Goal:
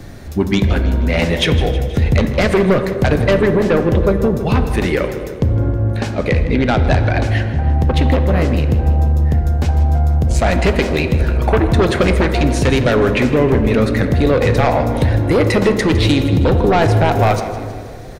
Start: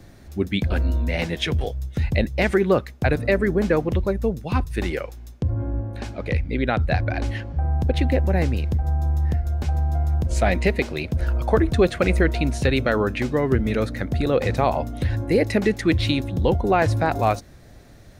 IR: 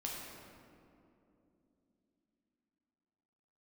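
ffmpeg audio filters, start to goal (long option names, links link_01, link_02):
-filter_complex "[0:a]aeval=exprs='0.562*(cos(1*acos(clip(val(0)/0.562,-1,1)))-cos(1*PI/2))+0.251*(cos(5*acos(clip(val(0)/0.562,-1,1)))-cos(5*PI/2))':channel_layout=same,acompressor=threshold=-13dB:ratio=6,aecho=1:1:159|318|477|636|795|954:0.178|0.101|0.0578|0.0329|0.0188|0.0107,asplit=2[link_01][link_02];[1:a]atrim=start_sample=2205,asetrate=70560,aresample=44100,highshelf=frequency=4900:gain=-8[link_03];[link_02][link_03]afir=irnorm=-1:irlink=0,volume=0dB[link_04];[link_01][link_04]amix=inputs=2:normalize=0,volume=-1dB"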